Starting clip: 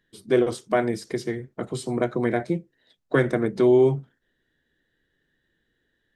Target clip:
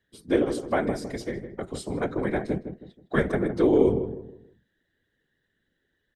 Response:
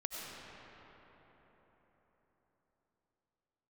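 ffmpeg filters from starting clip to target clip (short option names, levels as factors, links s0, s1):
-filter_complex "[0:a]afftfilt=real='hypot(re,im)*cos(2*PI*random(0))':imag='hypot(re,im)*sin(2*PI*random(1))':win_size=512:overlap=0.75,asplit=2[s0][s1];[s1]adelay=159,lowpass=f=1100:p=1,volume=0.376,asplit=2[s2][s3];[s3]adelay=159,lowpass=f=1100:p=1,volume=0.36,asplit=2[s4][s5];[s5]adelay=159,lowpass=f=1100:p=1,volume=0.36,asplit=2[s6][s7];[s7]adelay=159,lowpass=f=1100:p=1,volume=0.36[s8];[s2][s4][s6][s8]amix=inputs=4:normalize=0[s9];[s0][s9]amix=inputs=2:normalize=0,volume=1.41"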